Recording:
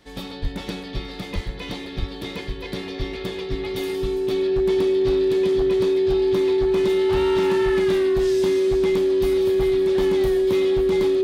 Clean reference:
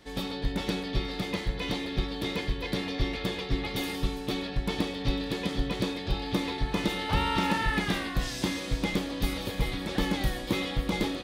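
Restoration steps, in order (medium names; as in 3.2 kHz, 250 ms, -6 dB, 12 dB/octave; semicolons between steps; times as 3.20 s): clip repair -15 dBFS; band-stop 380 Hz, Q 30; 0.41–0.53 s: high-pass 140 Hz 24 dB/octave; 1.34–1.46 s: high-pass 140 Hz 24 dB/octave; 1.99–2.11 s: high-pass 140 Hz 24 dB/octave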